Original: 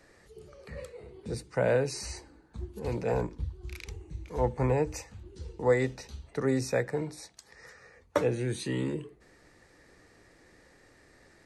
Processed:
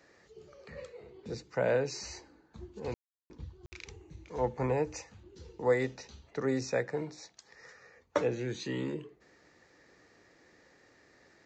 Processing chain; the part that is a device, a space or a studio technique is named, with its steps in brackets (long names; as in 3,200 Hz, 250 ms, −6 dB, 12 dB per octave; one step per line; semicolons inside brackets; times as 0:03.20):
call with lost packets (high-pass filter 170 Hz 6 dB per octave; downsampling to 16,000 Hz; dropped packets of 60 ms bursts)
level −2 dB